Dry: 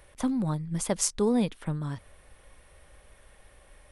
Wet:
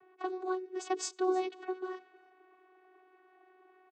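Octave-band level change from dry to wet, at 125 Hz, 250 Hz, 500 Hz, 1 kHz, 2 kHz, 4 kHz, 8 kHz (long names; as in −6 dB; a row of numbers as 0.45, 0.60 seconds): below −40 dB, −10.5 dB, −2.5 dB, +2.0 dB, −1.0 dB, −7.0 dB, −12.0 dB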